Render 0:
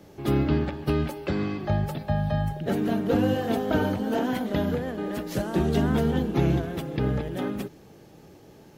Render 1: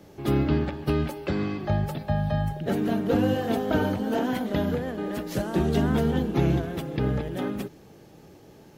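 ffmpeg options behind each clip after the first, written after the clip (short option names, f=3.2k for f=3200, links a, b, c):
-af anull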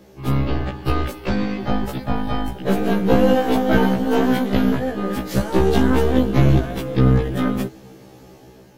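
-af "aeval=exprs='0.251*(cos(1*acos(clip(val(0)/0.251,-1,1)))-cos(1*PI/2))+0.0794*(cos(2*acos(clip(val(0)/0.251,-1,1)))-cos(2*PI/2))+0.01*(cos(6*acos(clip(val(0)/0.251,-1,1)))-cos(6*PI/2))':c=same,dynaudnorm=f=310:g=5:m=5.5dB,afftfilt=real='re*1.73*eq(mod(b,3),0)':imag='im*1.73*eq(mod(b,3),0)':win_size=2048:overlap=0.75,volume=4.5dB"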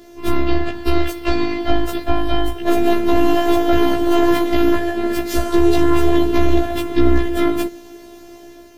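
-af "afftfilt=real='hypot(re,im)*cos(PI*b)':imag='0':win_size=512:overlap=0.75,alimiter=level_in=10dB:limit=-1dB:release=50:level=0:latency=1,volume=-1dB"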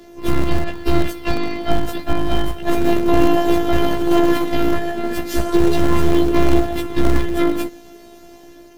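-filter_complex "[0:a]aphaser=in_gain=1:out_gain=1:delay=4.5:decay=0.28:speed=0.31:type=sinusoidal,acrossover=split=180[a][b];[a]acrusher=bits=3:mode=log:mix=0:aa=0.000001[c];[c][b]amix=inputs=2:normalize=0,tremolo=f=160:d=0.261,volume=-1dB"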